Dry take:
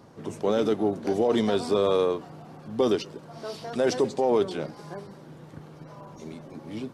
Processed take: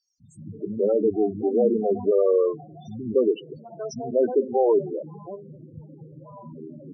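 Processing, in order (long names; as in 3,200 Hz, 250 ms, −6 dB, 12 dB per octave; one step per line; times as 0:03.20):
three-band delay without the direct sound highs, lows, mids 200/360 ms, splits 230/4,300 Hz
spectral peaks only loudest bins 8
level +4.5 dB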